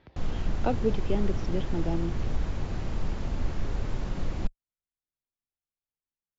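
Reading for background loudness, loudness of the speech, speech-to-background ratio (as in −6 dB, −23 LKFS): −34.5 LKFS, −32.0 LKFS, 2.5 dB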